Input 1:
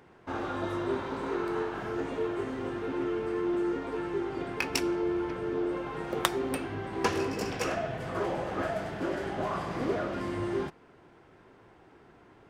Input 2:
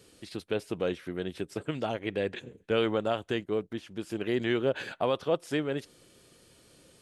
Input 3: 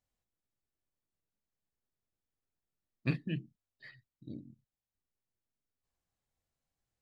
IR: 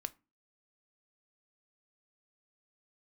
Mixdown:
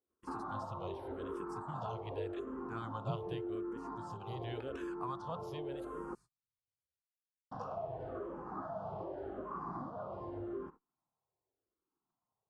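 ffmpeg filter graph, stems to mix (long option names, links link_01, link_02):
-filter_complex "[0:a]lowpass=4100,bandreject=frequency=1000:width=28,acompressor=threshold=-36dB:ratio=20,volume=-1.5dB,asplit=3[link_01][link_02][link_03];[link_01]atrim=end=6.15,asetpts=PTS-STARTPTS,afade=type=out:start_time=6.146:duration=0.004:curve=hsin[link_04];[link_02]atrim=start=6.15:end=7.51,asetpts=PTS-STARTPTS,volume=0[link_05];[link_03]atrim=start=7.51,asetpts=PTS-STARTPTS,afade=type=in:duration=0.004:curve=hsin[link_06];[link_04][link_05][link_06]concat=n=3:v=0:a=1[link_07];[1:a]agate=range=-33dB:threshold=-57dB:ratio=3:detection=peak,firequalizer=gain_entry='entry(110,0);entry(250,-18);entry(2100,3)':delay=0.05:min_phase=1,volume=-2dB[link_08];[2:a]volume=-5.5dB[link_09];[link_07][link_08][link_09]amix=inputs=3:normalize=0,agate=range=-33dB:threshold=-52dB:ratio=16:detection=peak,highshelf=frequency=1500:width_type=q:width=3:gain=-11.5,asplit=2[link_10][link_11];[link_11]afreqshift=-0.86[link_12];[link_10][link_12]amix=inputs=2:normalize=1"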